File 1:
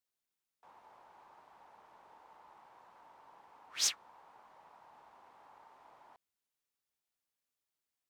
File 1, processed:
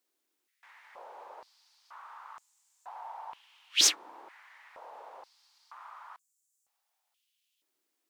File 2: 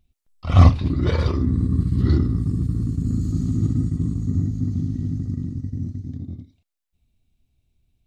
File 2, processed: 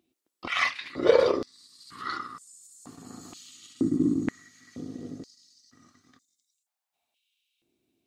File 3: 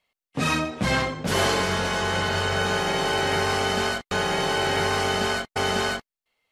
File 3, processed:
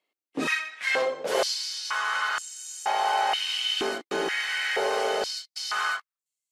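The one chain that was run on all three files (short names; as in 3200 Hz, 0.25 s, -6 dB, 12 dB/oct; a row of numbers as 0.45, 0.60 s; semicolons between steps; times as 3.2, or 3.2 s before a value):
stepped high-pass 2.1 Hz 320–7300 Hz; match loudness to -27 LUFS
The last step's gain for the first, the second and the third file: +8.0, +0.5, -6.0 dB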